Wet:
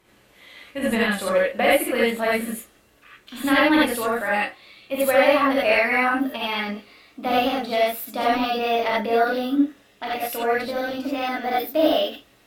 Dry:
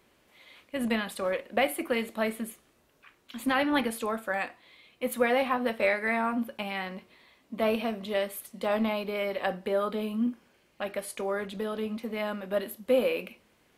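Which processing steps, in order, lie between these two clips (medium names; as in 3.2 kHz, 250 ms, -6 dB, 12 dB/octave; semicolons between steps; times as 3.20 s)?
gliding tape speed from 97% -> 124%; gated-style reverb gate 110 ms rising, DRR -6 dB; trim +2 dB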